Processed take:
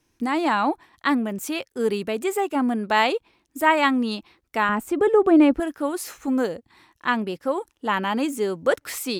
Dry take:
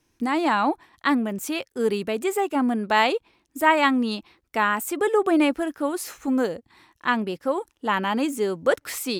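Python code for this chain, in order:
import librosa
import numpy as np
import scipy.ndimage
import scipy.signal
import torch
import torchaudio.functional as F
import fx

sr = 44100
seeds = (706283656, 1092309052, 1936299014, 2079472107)

y = fx.tilt_eq(x, sr, slope=-3.0, at=(4.69, 5.6))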